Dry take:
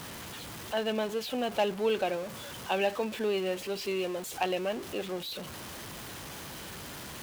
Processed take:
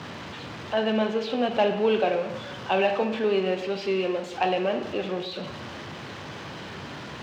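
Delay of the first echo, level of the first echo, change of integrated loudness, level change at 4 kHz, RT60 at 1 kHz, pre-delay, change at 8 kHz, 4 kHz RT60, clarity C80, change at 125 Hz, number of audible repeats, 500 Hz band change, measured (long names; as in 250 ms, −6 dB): no echo audible, no echo audible, +7.0 dB, +3.0 dB, 0.90 s, 18 ms, can't be measured, 0.80 s, 10.0 dB, +7.0 dB, no echo audible, +6.5 dB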